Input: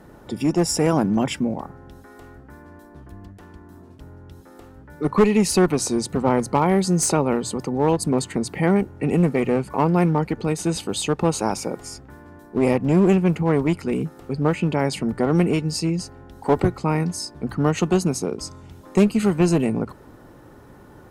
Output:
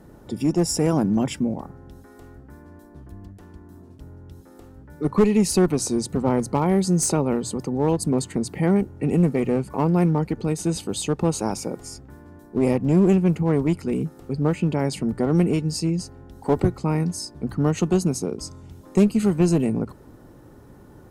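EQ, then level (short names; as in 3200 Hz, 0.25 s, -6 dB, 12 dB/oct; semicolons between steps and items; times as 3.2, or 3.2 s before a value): tone controls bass -2 dB, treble +6 dB; low shelf 450 Hz +10 dB; -7.0 dB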